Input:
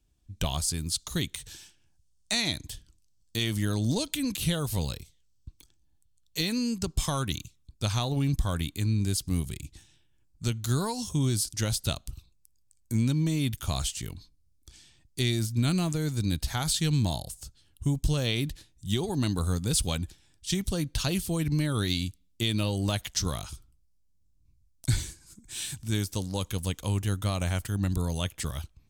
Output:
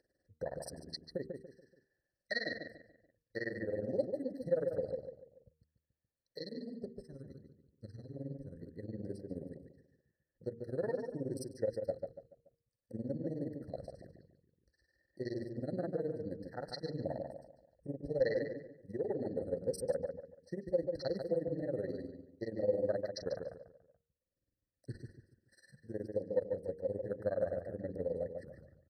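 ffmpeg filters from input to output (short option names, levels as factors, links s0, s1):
-filter_complex "[0:a]tremolo=f=19:d=0.9,asettb=1/sr,asplit=3[s0][s1][s2];[s0]atrim=end=6.414[s3];[s1]atrim=start=6.41:end=8.61,asetpts=PTS-STARTPTS,afade=t=in:d=0.004:c=qsin,afade=t=out:st=2.196:d=0.004:c=qsin,equalizer=f=880:t=o:w=2.3:g=-14.5[s4];[s2]atrim=start=8.606[s5];[s3][s4]acrossfade=d=0.004:c1=hsin:c2=qsin[s6];[s6][s5]acrossfade=d=0.004:c1=qsin:c2=hsin,afwtdn=0.0141,lowpass=f=3800:p=1,aemphasis=mode=production:type=50fm,asplit=2[s7][s8];[s8]adelay=143,lowpass=f=2400:p=1,volume=0.562,asplit=2[s9][s10];[s10]adelay=143,lowpass=f=2400:p=1,volume=0.33,asplit=2[s11][s12];[s12]adelay=143,lowpass=f=2400:p=1,volume=0.33,asplit=2[s13][s14];[s14]adelay=143,lowpass=f=2400:p=1,volume=0.33[s15];[s7][s9][s11][s13][s15]amix=inputs=5:normalize=0,acompressor=mode=upward:threshold=0.00501:ratio=2.5,asplit=3[s16][s17][s18];[s16]bandpass=f=530:t=q:w=8,volume=1[s19];[s17]bandpass=f=1840:t=q:w=8,volume=0.501[s20];[s18]bandpass=f=2480:t=q:w=8,volume=0.355[s21];[s19][s20][s21]amix=inputs=3:normalize=0,bandreject=f=77.95:t=h:w=4,bandreject=f=155.9:t=h:w=4,bandreject=f=233.85:t=h:w=4,bandreject=f=311.8:t=h:w=4,bandreject=f=389.75:t=h:w=4,bandreject=f=467.7:t=h:w=4,afftfilt=real='re*eq(mod(floor(b*sr/1024/2000),2),0)':imag='im*eq(mod(floor(b*sr/1024/2000),2),0)':win_size=1024:overlap=0.75,volume=4.22"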